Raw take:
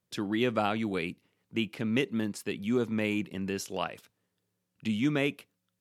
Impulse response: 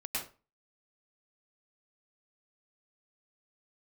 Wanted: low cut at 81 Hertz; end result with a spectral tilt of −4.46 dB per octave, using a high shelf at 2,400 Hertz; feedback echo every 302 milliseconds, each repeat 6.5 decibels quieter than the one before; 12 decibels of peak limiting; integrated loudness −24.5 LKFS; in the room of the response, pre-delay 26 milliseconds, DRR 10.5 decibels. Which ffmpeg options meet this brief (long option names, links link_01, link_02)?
-filter_complex "[0:a]highpass=81,highshelf=frequency=2400:gain=6.5,alimiter=limit=-22.5dB:level=0:latency=1,aecho=1:1:302|604|906|1208|1510|1812:0.473|0.222|0.105|0.0491|0.0231|0.0109,asplit=2[link_01][link_02];[1:a]atrim=start_sample=2205,adelay=26[link_03];[link_02][link_03]afir=irnorm=-1:irlink=0,volume=-13.5dB[link_04];[link_01][link_04]amix=inputs=2:normalize=0,volume=8.5dB"